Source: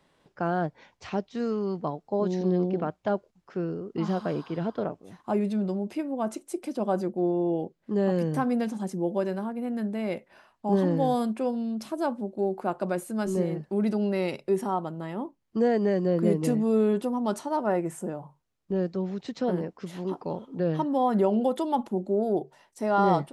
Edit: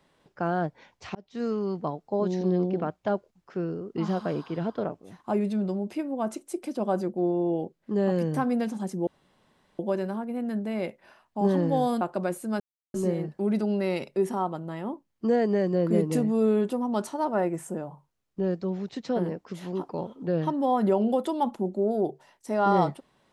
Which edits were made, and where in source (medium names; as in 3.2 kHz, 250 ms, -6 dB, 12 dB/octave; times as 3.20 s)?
1.15–1.45 s: fade in
9.07 s: insert room tone 0.72 s
11.29–12.67 s: delete
13.26 s: insert silence 0.34 s